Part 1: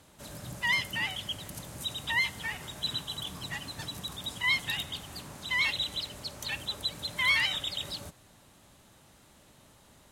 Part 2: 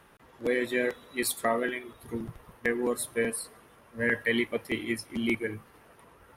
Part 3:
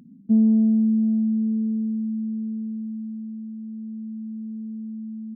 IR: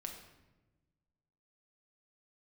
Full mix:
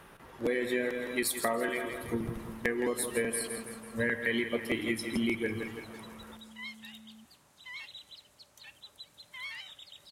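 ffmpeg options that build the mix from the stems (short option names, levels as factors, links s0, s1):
-filter_complex "[0:a]lowshelf=f=380:g=-8.5,adelay=2150,volume=0.158[s0];[1:a]volume=1.33,asplit=3[s1][s2][s3];[s2]volume=0.376[s4];[s3]volume=0.316[s5];[2:a]acompressor=threshold=0.0282:ratio=6,adelay=1900,volume=0.112[s6];[3:a]atrim=start_sample=2205[s7];[s4][s7]afir=irnorm=-1:irlink=0[s8];[s5]aecho=0:1:165|330|495|660|825|990|1155:1|0.48|0.23|0.111|0.0531|0.0255|0.0122[s9];[s0][s1][s6][s8][s9]amix=inputs=5:normalize=0,acompressor=threshold=0.0398:ratio=4"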